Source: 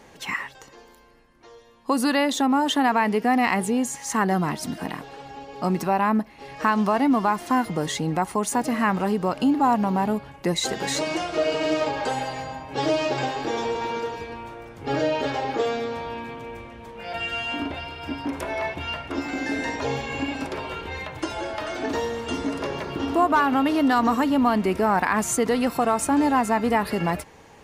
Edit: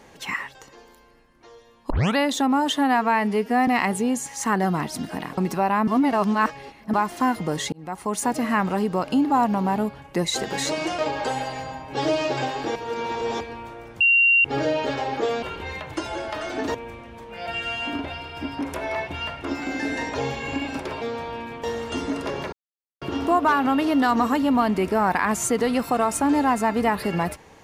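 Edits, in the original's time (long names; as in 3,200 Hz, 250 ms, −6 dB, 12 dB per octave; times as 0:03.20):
0:01.90: tape start 0.26 s
0:02.73–0:03.36: time-stretch 1.5×
0:05.06–0:05.67: remove
0:06.17–0:07.23: reverse
0:08.02–0:08.49: fade in
0:11.28–0:11.79: remove
0:13.56–0:14.21: reverse
0:14.81: insert tone 2,760 Hz −13.5 dBFS 0.44 s
0:15.79–0:16.41: swap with 0:20.68–0:22.00
0:22.89: splice in silence 0.49 s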